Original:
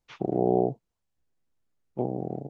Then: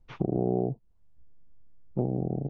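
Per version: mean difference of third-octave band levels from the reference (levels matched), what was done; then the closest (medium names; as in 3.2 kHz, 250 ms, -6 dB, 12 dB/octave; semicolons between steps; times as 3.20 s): 2.5 dB: tilt EQ -4 dB/octave; compression 2.5:1, threshold -33 dBFS, peak gain reduction 14 dB; trim +3.5 dB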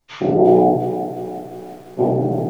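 4.5 dB: gated-style reverb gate 220 ms falling, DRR -7.5 dB; bit-crushed delay 347 ms, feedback 55%, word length 8-bit, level -10 dB; trim +5.5 dB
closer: first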